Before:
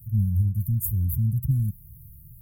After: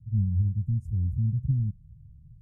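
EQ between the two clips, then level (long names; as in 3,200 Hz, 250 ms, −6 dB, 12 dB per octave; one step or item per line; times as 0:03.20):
low-pass filter 4,200 Hz 24 dB per octave
−2.5 dB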